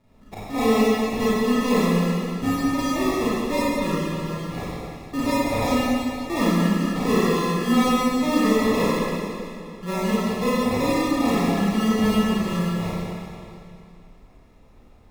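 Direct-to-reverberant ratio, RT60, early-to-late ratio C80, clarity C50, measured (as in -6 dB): -9.5 dB, 2.6 s, -3.0 dB, -5.5 dB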